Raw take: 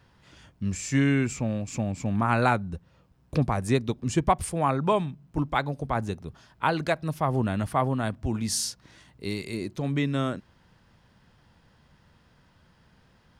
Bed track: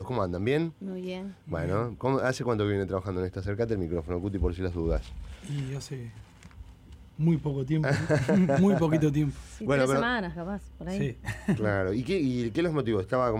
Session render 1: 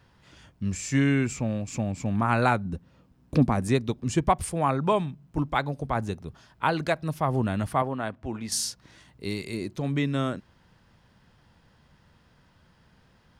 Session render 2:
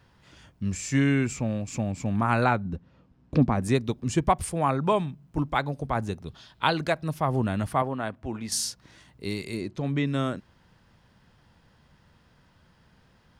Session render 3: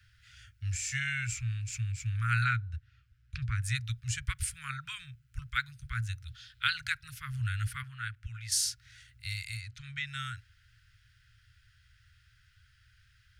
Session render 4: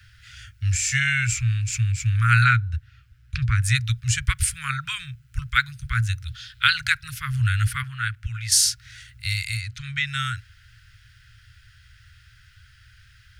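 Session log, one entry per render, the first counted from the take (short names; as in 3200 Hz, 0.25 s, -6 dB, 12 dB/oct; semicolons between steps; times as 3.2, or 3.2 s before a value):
2.65–3.68 bell 250 Hz +9 dB; 7.82–8.52 tone controls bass -9 dB, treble -11 dB
2.44–3.63 air absorption 100 m; 6.26–6.73 bell 3700 Hz +12.5 dB 0.78 oct; 9.61–10.07 air absorption 61 m
Chebyshev band-stop 120–1400 Hz, order 5
gain +11.5 dB; limiter -2 dBFS, peak gain reduction 1 dB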